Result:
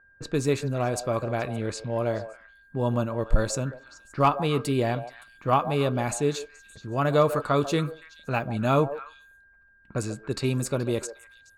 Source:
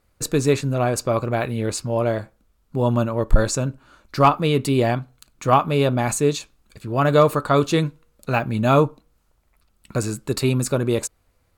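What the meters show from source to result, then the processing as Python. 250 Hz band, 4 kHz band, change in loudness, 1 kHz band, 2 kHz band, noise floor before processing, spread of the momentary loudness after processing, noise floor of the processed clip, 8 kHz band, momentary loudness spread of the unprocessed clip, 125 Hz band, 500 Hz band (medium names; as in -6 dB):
-6.0 dB, -6.0 dB, -6.0 dB, -5.5 dB, -5.5 dB, -65 dBFS, 13 LU, -58 dBFS, -7.5 dB, 11 LU, -6.0 dB, -5.5 dB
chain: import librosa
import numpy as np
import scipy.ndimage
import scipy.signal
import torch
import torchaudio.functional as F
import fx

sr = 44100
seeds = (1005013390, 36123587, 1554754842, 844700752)

y = x + 10.0 ** (-45.0 / 20.0) * np.sin(2.0 * np.pi * 1600.0 * np.arange(len(x)) / sr)
y = fx.env_lowpass(y, sr, base_hz=1200.0, full_db=-17.0)
y = fx.echo_stepped(y, sr, ms=142, hz=620.0, octaves=1.4, feedback_pct=70, wet_db=-9)
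y = F.gain(torch.from_numpy(y), -6.0).numpy()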